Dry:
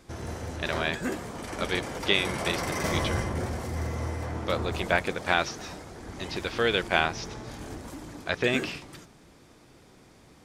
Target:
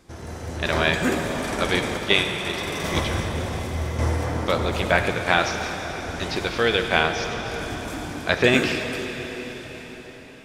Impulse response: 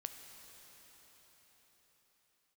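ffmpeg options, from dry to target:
-filter_complex "[0:a]asettb=1/sr,asplit=3[link_01][link_02][link_03];[link_01]atrim=end=1.974[link_04];[link_02]atrim=start=1.97:end=3.99,asetpts=PTS-STARTPTS,afade=type=in:duration=0.004:curve=qsin,afade=type=out:start_time=2.016:duration=0.004:curve=qsin,agate=range=-8dB:threshold=-24dB:ratio=16:detection=peak[link_05];[link_03]atrim=start=3.986[link_06];[link_04][link_05]acrossfade=duration=0.004:curve1=hsin:curve2=qsin[link_07];[link_07][link_06]acrossfade=duration=0.004:curve1=qsin:curve2=hsin,dynaudnorm=framelen=110:gausssize=11:maxgain=10.5dB[link_08];[1:a]atrim=start_sample=2205,asetrate=48510,aresample=44100[link_09];[link_08][link_09]afir=irnorm=-1:irlink=0,volume=4.5dB"

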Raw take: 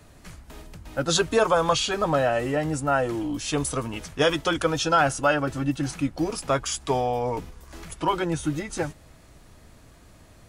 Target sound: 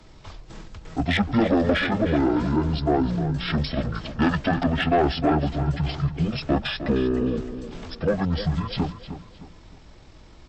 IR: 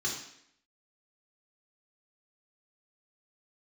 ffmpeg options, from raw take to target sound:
-filter_complex "[0:a]acrossover=split=210|1100|5600[link_01][link_02][link_03][link_04];[link_04]alimiter=level_in=3dB:limit=-24dB:level=0:latency=1:release=489,volume=-3dB[link_05];[link_01][link_02][link_03][link_05]amix=inputs=4:normalize=0,asoftclip=type=tanh:threshold=-16.5dB,asetrate=22696,aresample=44100,atempo=1.94306,asplit=2[link_06][link_07];[link_07]adelay=308,lowpass=frequency=4100:poles=1,volume=-11dB,asplit=2[link_08][link_09];[link_09]adelay=308,lowpass=frequency=4100:poles=1,volume=0.37,asplit=2[link_10][link_11];[link_11]adelay=308,lowpass=frequency=4100:poles=1,volume=0.37,asplit=2[link_12][link_13];[link_13]adelay=308,lowpass=frequency=4100:poles=1,volume=0.37[link_14];[link_06][link_08][link_10][link_12][link_14]amix=inputs=5:normalize=0,volume=3.5dB"

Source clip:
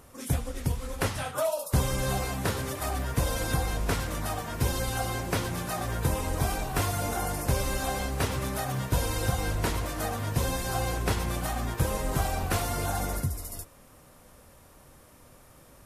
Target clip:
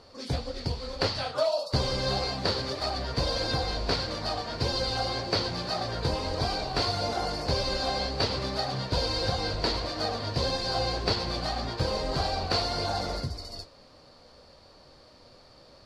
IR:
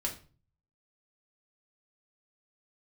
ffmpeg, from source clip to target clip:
-af "flanger=delay=8.7:depth=7.7:regen=-55:speed=1.7:shape=sinusoidal,lowpass=frequency=4500:width_type=q:width=14,equalizer=frequency=550:width_type=o:width=1.6:gain=7.5"

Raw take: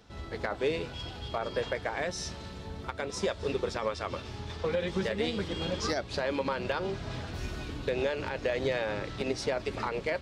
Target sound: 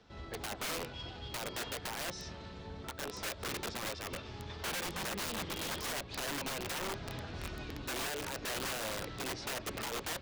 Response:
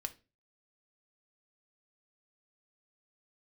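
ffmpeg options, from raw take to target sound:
-filter_complex "[0:a]lowpass=5700,lowshelf=frequency=170:gain=-3,acrossover=split=160|3400[link_01][link_02][link_03];[link_03]alimiter=level_in=11.5dB:limit=-24dB:level=0:latency=1:release=472,volume=-11.5dB[link_04];[link_01][link_02][link_04]amix=inputs=3:normalize=0,aeval=exprs='(mod(28.2*val(0)+1,2)-1)/28.2':channel_layout=same,volume=-3.5dB"

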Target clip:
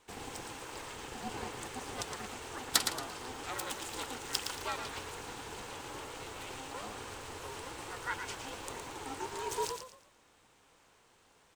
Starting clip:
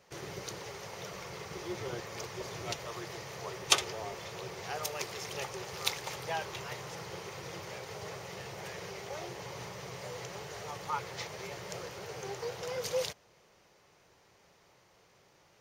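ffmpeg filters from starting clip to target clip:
ffmpeg -i in.wav -filter_complex "[0:a]asetrate=59535,aresample=44100,aeval=exprs='val(0)*sin(2*PI*260*n/s)':channel_layout=same,asplit=5[link_01][link_02][link_03][link_04][link_05];[link_02]adelay=114,afreqshift=39,volume=-7dB[link_06];[link_03]adelay=228,afreqshift=78,volume=-17.2dB[link_07];[link_04]adelay=342,afreqshift=117,volume=-27.3dB[link_08];[link_05]adelay=456,afreqshift=156,volume=-37.5dB[link_09];[link_01][link_06][link_07][link_08][link_09]amix=inputs=5:normalize=0,volume=1dB" out.wav

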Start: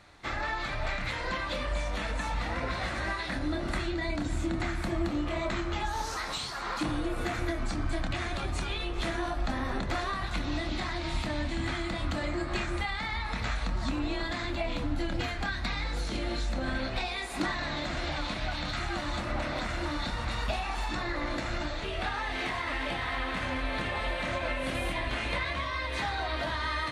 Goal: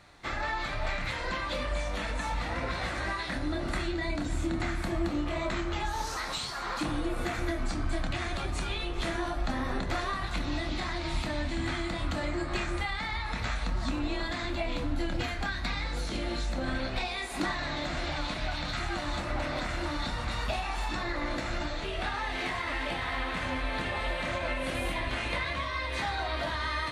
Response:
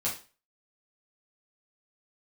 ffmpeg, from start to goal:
-filter_complex "[0:a]asplit=2[link_01][link_02];[1:a]atrim=start_sample=2205,highshelf=frequency=7700:gain=10.5[link_03];[link_02][link_03]afir=irnorm=-1:irlink=0,volume=-15.5dB[link_04];[link_01][link_04]amix=inputs=2:normalize=0,volume=-1.5dB"

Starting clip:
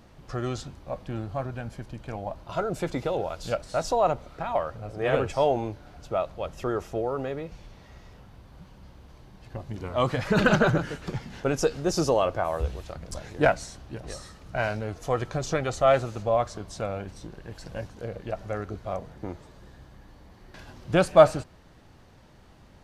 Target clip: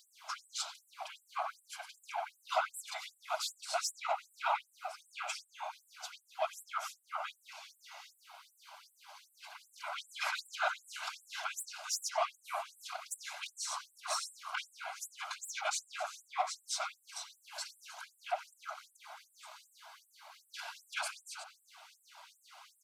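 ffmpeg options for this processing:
ffmpeg -i in.wav -filter_complex "[0:a]asettb=1/sr,asplit=3[link_01][link_02][link_03];[link_01]atrim=end=13.634[link_04];[link_02]atrim=start=13.63:end=14.73,asetpts=PTS-STARTPTS,afade=type=in:duration=0.004:curve=qsin,afade=type=out:start_time=1.096:duration=0.004:curve=qsin,equalizer=frequency=1100:width=2.5:gain=15[link_05];[link_03]atrim=start=14.726[link_06];[link_04][link_05]acrossfade=duration=0.004:curve1=hsin:curve2=qsin[link_07];[link_07][link_06]acrossfade=duration=0.004:curve1=qsin:curve2=hsin,acompressor=threshold=-31dB:ratio=2.5,asoftclip=type=tanh:threshold=-28.5dB,afftfilt=real='hypot(re,im)*cos(2*PI*random(0))':imag='hypot(re,im)*sin(2*PI*random(1))':win_size=512:overlap=0.75,asuperstop=centerf=1800:order=4:qfactor=5.4,asplit=2[link_08][link_09];[link_09]adelay=90,highpass=300,lowpass=3400,asoftclip=type=hard:threshold=-15.5dB,volume=-7dB[link_10];[link_08][link_10]amix=inputs=2:normalize=0,afftfilt=real='re*gte(b*sr/1024,590*pow(7700/590,0.5+0.5*sin(2*PI*2.6*pts/sr)))':imag='im*gte(b*sr/1024,590*pow(7700/590,0.5+0.5*sin(2*PI*2.6*pts/sr)))':win_size=1024:overlap=0.75,volume=13dB" out.wav

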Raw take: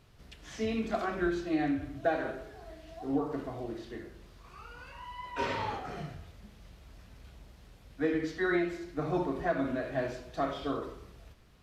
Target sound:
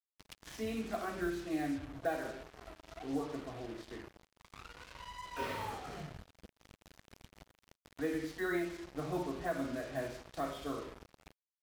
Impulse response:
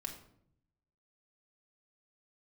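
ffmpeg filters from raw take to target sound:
-af "acrusher=bits=6:mix=0:aa=0.5,acompressor=mode=upward:threshold=-36dB:ratio=2.5,volume=-6dB"

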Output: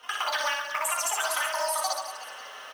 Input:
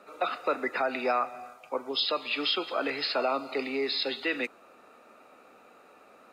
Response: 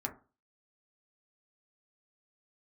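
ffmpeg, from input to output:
-filter_complex "[0:a]asetrate=101871,aresample=44100,lowshelf=frequency=160:gain=10[link_01];[1:a]atrim=start_sample=2205,afade=type=out:start_time=0.15:duration=0.01,atrim=end_sample=7056[link_02];[link_01][link_02]afir=irnorm=-1:irlink=0,acrossover=split=300[link_03][link_04];[link_04]dynaudnorm=framelen=170:gausssize=3:maxgain=10dB[link_05];[link_03][link_05]amix=inputs=2:normalize=0,acrusher=bits=5:mode=log:mix=0:aa=0.000001,acompressor=threshold=-29dB:ratio=4,asplit=2[link_06][link_07];[link_07]aecho=0:1:60|138|239.4|371.2|542.6:0.631|0.398|0.251|0.158|0.1[link_08];[link_06][link_08]amix=inputs=2:normalize=0"

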